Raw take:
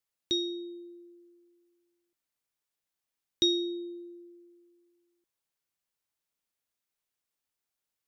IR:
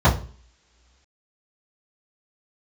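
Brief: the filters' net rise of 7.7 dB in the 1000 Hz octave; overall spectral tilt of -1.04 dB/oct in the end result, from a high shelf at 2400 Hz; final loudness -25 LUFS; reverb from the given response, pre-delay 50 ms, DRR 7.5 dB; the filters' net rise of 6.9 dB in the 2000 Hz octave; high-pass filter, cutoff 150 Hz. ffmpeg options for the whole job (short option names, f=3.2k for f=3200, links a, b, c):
-filter_complex "[0:a]highpass=150,equalizer=f=1k:t=o:g=8.5,equalizer=f=2k:t=o:g=3.5,highshelf=f=2.4k:g=6,asplit=2[a][b];[1:a]atrim=start_sample=2205,adelay=50[c];[b][c]afir=irnorm=-1:irlink=0,volume=-29dB[d];[a][d]amix=inputs=2:normalize=0,volume=1dB"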